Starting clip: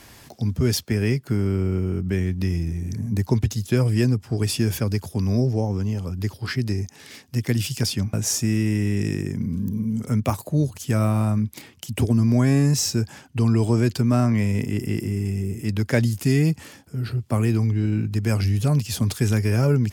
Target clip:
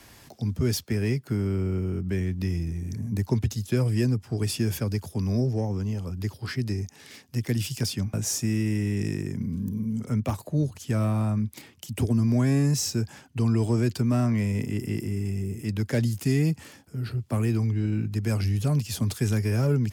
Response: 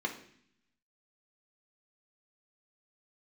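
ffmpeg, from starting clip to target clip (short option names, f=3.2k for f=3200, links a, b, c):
-filter_complex "[0:a]asettb=1/sr,asplit=3[a][b][c];[a]atrim=end=9.994[d];[b]atrim=start=9.99:end=11.4,asetpts=PTS-STARTPTS,afade=t=in:d=0.004:c=qsin,afade=t=out:st=1.406:d=0.004:c=qsin,highshelf=f=8.3k:g=-7[e];[c]atrim=start=11.396[f];[d][e]acrossfade=d=0.004:c1=hsin:c2=qsin[g];[g][f]acrossfade=d=0.004:c1=qsin:c2=hsin,acrossover=split=150|490|5900[h][i][j][k];[j]asoftclip=type=tanh:threshold=-24.5dB[l];[h][i][l][k]amix=inputs=4:normalize=0,volume=-4dB"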